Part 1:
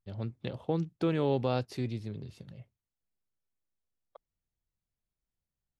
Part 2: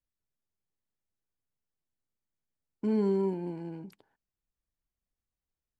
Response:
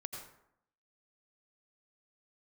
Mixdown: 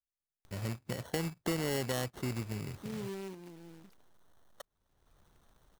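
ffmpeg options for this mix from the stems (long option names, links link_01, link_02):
-filter_complex "[0:a]acrusher=samples=18:mix=1:aa=0.000001,acompressor=mode=upward:threshold=-48dB:ratio=2.5,adelay=450,volume=2dB[link_01];[1:a]volume=-13.5dB[link_02];[link_01][link_02]amix=inputs=2:normalize=0,highshelf=frequency=3400:gain=4.5,acrusher=bits=2:mode=log:mix=0:aa=0.000001,acompressor=threshold=-35dB:ratio=2"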